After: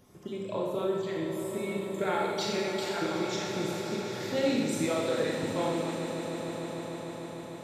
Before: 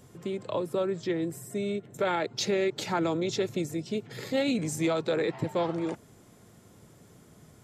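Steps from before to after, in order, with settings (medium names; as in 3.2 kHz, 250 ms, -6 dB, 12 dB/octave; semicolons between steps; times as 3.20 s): random holes in the spectrogram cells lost 22%; echo with a slow build-up 150 ms, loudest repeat 5, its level -13 dB; Schroeder reverb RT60 1.3 s, combs from 28 ms, DRR -2 dB; trim -4.5 dB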